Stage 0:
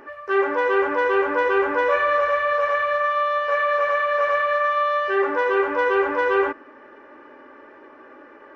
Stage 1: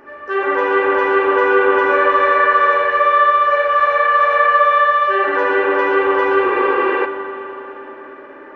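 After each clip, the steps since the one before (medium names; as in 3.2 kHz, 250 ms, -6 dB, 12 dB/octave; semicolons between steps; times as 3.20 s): spring tank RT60 3.8 s, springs 40/59 ms, chirp 40 ms, DRR -6.5 dB; spectral replace 6.48–7.03 s, 200–5300 Hz before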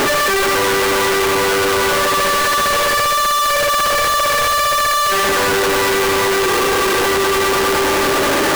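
one-bit comparator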